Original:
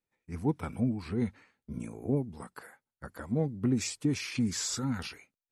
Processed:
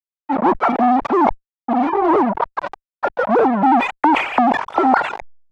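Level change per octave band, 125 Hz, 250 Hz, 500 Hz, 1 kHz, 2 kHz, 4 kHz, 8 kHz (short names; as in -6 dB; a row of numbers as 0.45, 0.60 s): -4.0 dB, +12.5 dB, +19.0 dB, +33.0 dB, +20.5 dB, +5.5 dB, under -10 dB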